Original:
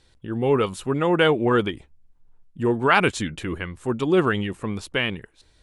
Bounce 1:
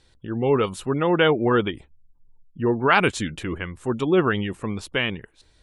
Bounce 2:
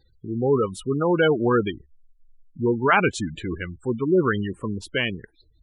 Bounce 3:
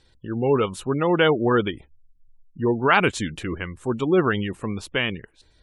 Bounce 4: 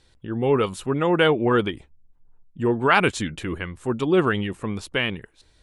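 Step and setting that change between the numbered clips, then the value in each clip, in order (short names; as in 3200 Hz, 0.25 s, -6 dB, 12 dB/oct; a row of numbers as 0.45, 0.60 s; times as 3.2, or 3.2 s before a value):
spectral gate, under each frame's peak: -40, -15, -30, -55 dB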